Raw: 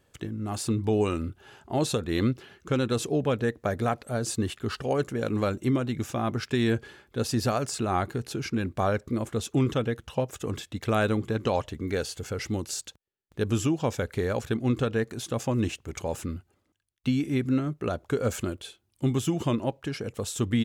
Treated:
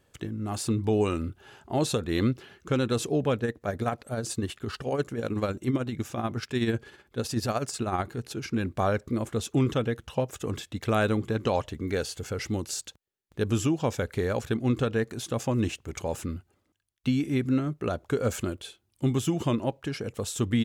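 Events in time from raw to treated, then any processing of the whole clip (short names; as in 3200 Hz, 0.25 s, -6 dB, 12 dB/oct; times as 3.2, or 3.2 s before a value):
3.38–8.52 tremolo 16 Hz, depth 52%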